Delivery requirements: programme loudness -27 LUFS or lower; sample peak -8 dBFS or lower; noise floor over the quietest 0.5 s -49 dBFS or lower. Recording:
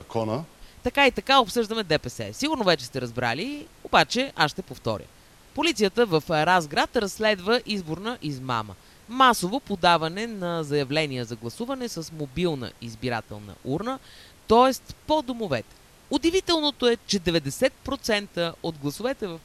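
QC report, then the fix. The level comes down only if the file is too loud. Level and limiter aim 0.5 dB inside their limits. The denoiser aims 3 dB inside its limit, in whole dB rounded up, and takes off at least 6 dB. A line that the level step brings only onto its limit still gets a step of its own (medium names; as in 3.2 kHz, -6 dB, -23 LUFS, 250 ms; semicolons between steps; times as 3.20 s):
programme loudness -24.5 LUFS: fail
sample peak -5.0 dBFS: fail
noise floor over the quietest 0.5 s -52 dBFS: pass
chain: trim -3 dB; peak limiter -8.5 dBFS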